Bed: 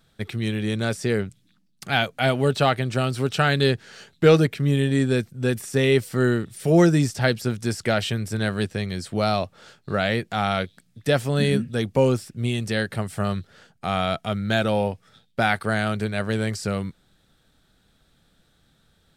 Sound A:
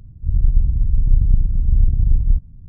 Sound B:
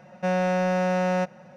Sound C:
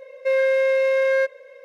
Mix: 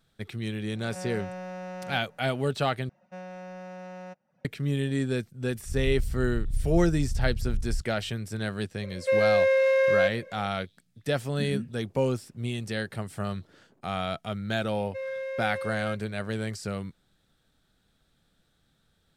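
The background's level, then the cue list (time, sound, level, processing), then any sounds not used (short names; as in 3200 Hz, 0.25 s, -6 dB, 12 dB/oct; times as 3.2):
bed -7 dB
0.73 add B -14.5 dB + spectral swells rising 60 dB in 0.73 s
2.89 replace with B -16.5 dB + reverb removal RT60 0.5 s
5.43 add A -14.5 dB
8.82 add C -2.5 dB
11.42 add A -9.5 dB + HPF 360 Hz 24 dB/oct
14.69 add C -15 dB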